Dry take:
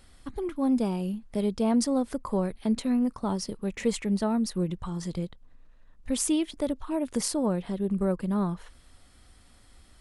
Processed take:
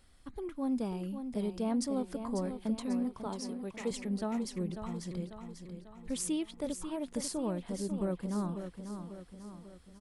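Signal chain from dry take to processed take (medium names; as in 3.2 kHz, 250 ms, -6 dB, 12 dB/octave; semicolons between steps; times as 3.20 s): 3.26–3.91 s: high-pass 230 Hz; feedback delay 544 ms, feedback 51%, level -8.5 dB; trim -8 dB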